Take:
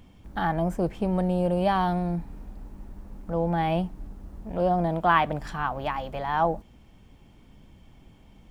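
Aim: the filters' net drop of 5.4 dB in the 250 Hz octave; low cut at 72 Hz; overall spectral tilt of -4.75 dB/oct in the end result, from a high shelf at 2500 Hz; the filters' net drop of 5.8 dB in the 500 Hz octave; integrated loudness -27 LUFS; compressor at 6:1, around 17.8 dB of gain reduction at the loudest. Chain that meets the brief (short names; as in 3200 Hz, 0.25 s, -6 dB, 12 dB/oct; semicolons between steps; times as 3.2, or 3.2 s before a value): HPF 72 Hz; bell 250 Hz -8.5 dB; bell 500 Hz -6 dB; high shelf 2500 Hz +4 dB; compressor 6:1, threshold -36 dBFS; gain +13.5 dB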